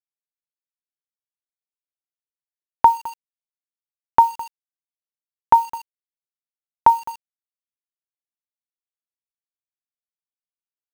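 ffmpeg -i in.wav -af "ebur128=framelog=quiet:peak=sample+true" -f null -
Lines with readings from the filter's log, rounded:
Integrated loudness:
  I:         -18.5 LUFS
  Threshold: -30.2 LUFS
Loudness range:
  LRA:         4.8 LU
  Threshold: -44.3 LUFS
  LRA low:   -26.5 LUFS
  LRA high:  -21.8 LUFS
Sample peak:
  Peak:       -1.6 dBFS
True peak:
  Peak:       -1.6 dBFS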